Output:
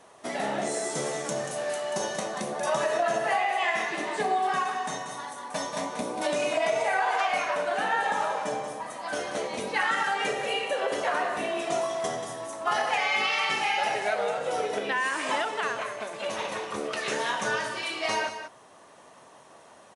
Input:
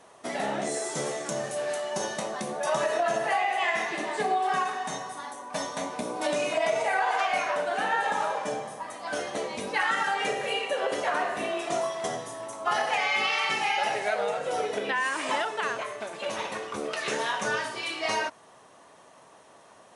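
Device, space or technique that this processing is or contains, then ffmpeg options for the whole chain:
ducked delay: -filter_complex "[0:a]asplit=3[s0][s1][s2];[s1]adelay=185,volume=0.631[s3];[s2]apad=whole_len=888025[s4];[s3][s4]sidechaincompress=threshold=0.0355:ratio=8:attack=5.4:release=1170[s5];[s0][s5]amix=inputs=2:normalize=0"

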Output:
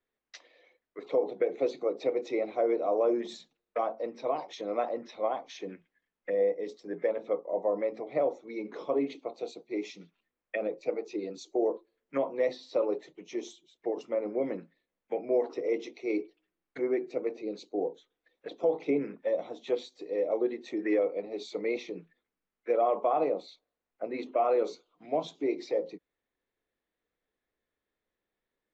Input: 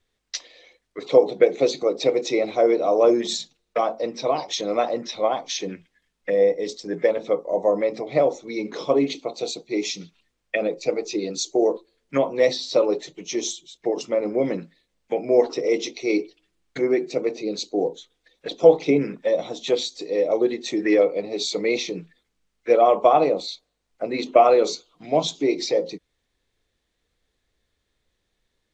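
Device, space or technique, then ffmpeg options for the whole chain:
DJ mixer with the lows and highs turned down: -filter_complex "[0:a]acrossover=split=190 2500:gain=0.224 1 0.178[s0][s1][s2];[s0][s1][s2]amix=inputs=3:normalize=0,alimiter=limit=0.335:level=0:latency=1:release=63,volume=0.398"

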